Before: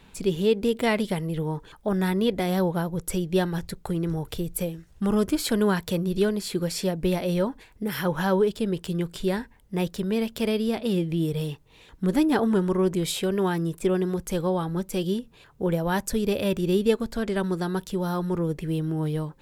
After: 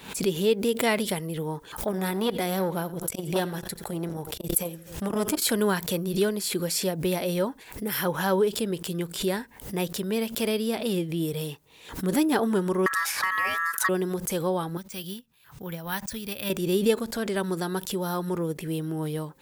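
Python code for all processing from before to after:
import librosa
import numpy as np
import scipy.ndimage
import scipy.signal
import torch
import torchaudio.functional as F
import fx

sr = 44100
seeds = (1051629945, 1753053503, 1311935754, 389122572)

y = fx.chain(x, sr, fx.echo_feedback(ms=85, feedback_pct=45, wet_db=-20.0),
    fx.transformer_sat(knee_hz=450.0), at=(1.87, 5.42))
y = fx.chain(y, sr, fx.ring_mod(carrier_hz=1500.0),
    fx.band_squash(depth_pct=100), at=(12.86, 13.89))
y = fx.chain(y, sr, fx.peak_eq(hz=440.0, db=-13.0, octaves=1.9),
    fx.resample_bad(factor=3, down='filtered', up='hold'),
    fx.upward_expand(threshold_db=-48.0, expansion=1.5), at=(14.77, 16.5))
y = fx.highpass(y, sr, hz=230.0, slope=6)
y = fx.high_shelf(y, sr, hz=8100.0, db=11.0)
y = fx.pre_swell(y, sr, db_per_s=110.0)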